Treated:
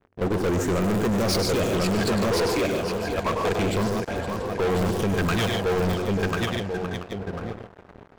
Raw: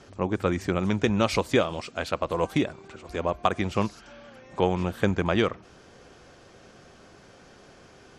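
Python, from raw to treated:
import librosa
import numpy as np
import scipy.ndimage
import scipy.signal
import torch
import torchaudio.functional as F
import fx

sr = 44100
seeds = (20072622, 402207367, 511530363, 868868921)

p1 = fx.phaser_stages(x, sr, stages=12, low_hz=180.0, high_hz=4600.0, hz=0.29, feedback_pct=35)
p2 = fx.transient(p1, sr, attack_db=-7, sustain_db=-2)
p3 = fx.echo_feedback(p2, sr, ms=1044, feedback_pct=21, wet_db=-4.5)
p4 = fx.env_lowpass(p3, sr, base_hz=620.0, full_db=-26.0)
p5 = (np.mod(10.0 ** (18.5 / 20.0) * p4 + 1.0, 2.0) - 1.0) / 10.0 ** (18.5 / 20.0)
p6 = p4 + F.gain(torch.from_numpy(p5), -11.0).numpy()
p7 = fx.level_steps(p6, sr, step_db=15)
p8 = fx.high_shelf(p7, sr, hz=4800.0, db=7.5)
p9 = fx.small_body(p8, sr, hz=(450.0, 680.0, 1600.0), ring_ms=30, db=7)
p10 = p9 + fx.echo_multitap(p9, sr, ms=(101, 143, 151, 514, 682), db=(-9.5, -11.0, -16.5, -14.0, -19.0), dry=0)
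p11 = fx.leveller(p10, sr, passes=5)
y = F.gain(torch.from_numpy(p11), -5.5).numpy()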